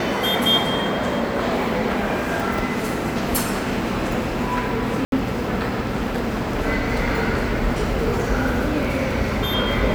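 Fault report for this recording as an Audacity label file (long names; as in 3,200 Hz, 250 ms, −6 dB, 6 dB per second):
5.050000	5.120000	drop-out 72 ms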